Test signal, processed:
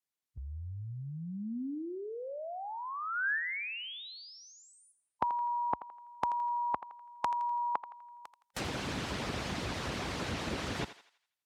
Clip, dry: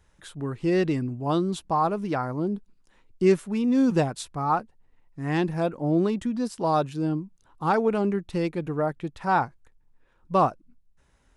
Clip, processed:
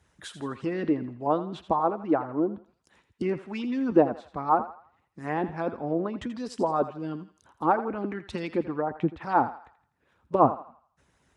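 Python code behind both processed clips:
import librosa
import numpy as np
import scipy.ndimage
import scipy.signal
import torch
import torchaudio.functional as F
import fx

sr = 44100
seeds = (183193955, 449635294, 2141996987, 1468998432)

y = fx.hpss(x, sr, part='harmonic', gain_db=-16)
y = scipy.signal.sosfilt(scipy.signal.butter(4, 54.0, 'highpass', fs=sr, output='sos'), y)
y = fx.env_lowpass_down(y, sr, base_hz=1100.0, full_db=-30.0)
y = fx.dynamic_eq(y, sr, hz=250.0, q=1.4, threshold_db=-48.0, ratio=4.0, max_db=4)
y = fx.echo_thinned(y, sr, ms=83, feedback_pct=44, hz=650.0, wet_db=-11.5)
y = F.gain(torch.from_numpy(y), 4.5).numpy()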